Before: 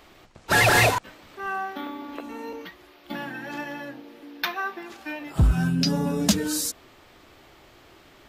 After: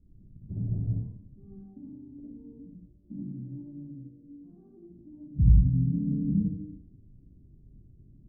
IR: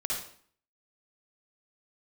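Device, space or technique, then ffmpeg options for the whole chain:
club heard from the street: -filter_complex "[0:a]alimiter=limit=-18.5dB:level=0:latency=1:release=164,lowpass=frequency=200:width=0.5412,lowpass=frequency=200:width=1.3066[link_01];[1:a]atrim=start_sample=2205[link_02];[link_01][link_02]afir=irnorm=-1:irlink=0,volume=2.5dB"

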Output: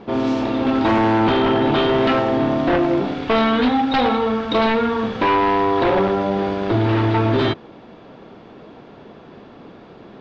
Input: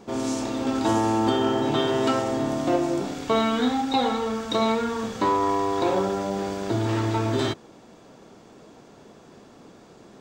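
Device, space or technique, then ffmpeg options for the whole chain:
synthesiser wavefolder: -af "aeval=exprs='0.119*(abs(mod(val(0)/0.119+3,4)-2)-1)':channel_layout=same,lowpass=frequency=3700:width=0.5412,lowpass=frequency=3700:width=1.3066,volume=7.5dB"

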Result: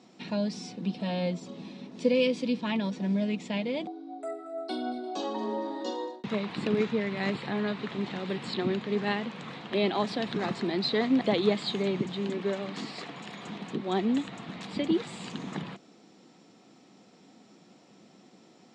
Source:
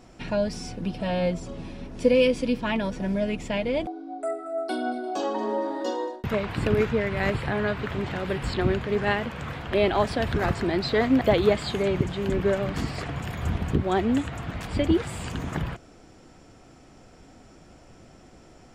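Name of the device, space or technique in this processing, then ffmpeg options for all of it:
television speaker: -filter_complex "[0:a]asettb=1/sr,asplit=3[link_01][link_02][link_03];[link_01]atrim=end=12.274[link_04];[link_02]atrim=start=12.27:end=13.88,asetpts=PTS-STARTPTS,afade=type=in:duration=0.004:curve=qsin,afade=type=out:start_time=1.606:duration=0.004:curve=qsin,highpass=frequency=290:poles=1[link_05];[link_03]atrim=start=13.876[link_06];[link_04][link_05]acrossfade=duration=0.004:curve1=hsin:curve2=qsin[link_07];[link_07][link_06]acrossfade=duration=0.004:curve1=qsin:curve2=hsin,highpass=frequency=170:width=0.5412,highpass=frequency=170:width=1.3066,equalizer=frequency=200:width_type=q:width=4:gain=6,equalizer=frequency=610:width_type=q:width=4:gain=-4,equalizer=frequency=1500:width_type=q:width=4:gain=-6,equalizer=frequency=3900:width_type=q:width=4:gain=8,lowpass=frequency=7800:width=0.5412,lowpass=frequency=7800:width=1.3066,volume=-4.5dB"

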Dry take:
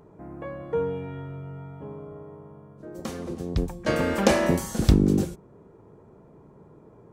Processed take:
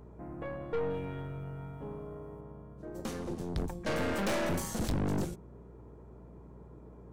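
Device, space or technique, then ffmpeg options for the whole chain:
valve amplifier with mains hum: -filter_complex "[0:a]asettb=1/sr,asplit=3[link_01][link_02][link_03];[link_01]atrim=end=0.904[link_04];[link_02]atrim=start=0.9:end=2.41,asetpts=PTS-STARTPTS,afade=type=in:duration=0.004:curve=qsin,afade=type=out:start_time=1.506:duration=0.004:curve=qsin,highshelf=frequency=5200:gain=9[link_05];[link_03]atrim=start=2.406[link_06];[link_04][link_05]acrossfade=duration=0.004:curve1=hsin:curve2=qsin[link_07];[link_07][link_06]acrossfade=duration=0.004:curve1=qsin:curve2=hsin,aeval=exprs='(tanh(25.1*val(0)+0.5)-tanh(0.5))/25.1':channel_layout=same,aeval=exprs='val(0)+0.00282*(sin(2*PI*60*n/s)+sin(2*PI*2*60*n/s)/2+sin(2*PI*3*60*n/s)/3+sin(2*PI*4*60*n/s)/4+sin(2*PI*5*60*n/s)/5)':channel_layout=same,volume=-1dB"

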